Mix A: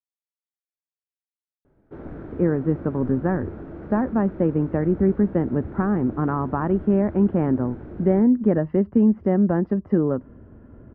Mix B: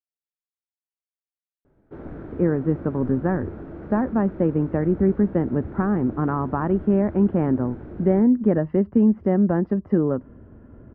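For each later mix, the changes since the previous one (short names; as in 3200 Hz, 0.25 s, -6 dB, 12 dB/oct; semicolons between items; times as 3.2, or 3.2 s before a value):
none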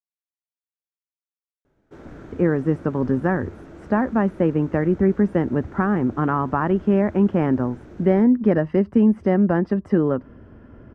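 background -6.0 dB; master: remove tape spacing loss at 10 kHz 43 dB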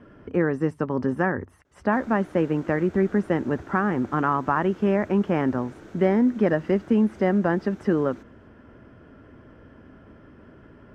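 speech: entry -2.05 s; master: add tilt +2 dB/oct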